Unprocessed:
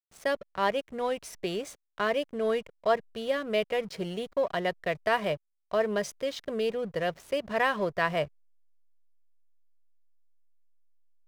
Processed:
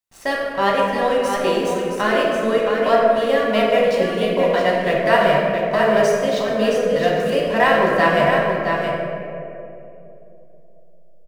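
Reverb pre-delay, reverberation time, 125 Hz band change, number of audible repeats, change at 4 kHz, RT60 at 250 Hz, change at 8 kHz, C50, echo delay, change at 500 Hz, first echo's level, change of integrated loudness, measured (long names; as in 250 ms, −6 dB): 4 ms, 3.0 s, +13.5 dB, 1, +11.0 dB, 3.4 s, +10.0 dB, −2.0 dB, 669 ms, +13.0 dB, −5.5 dB, +12.5 dB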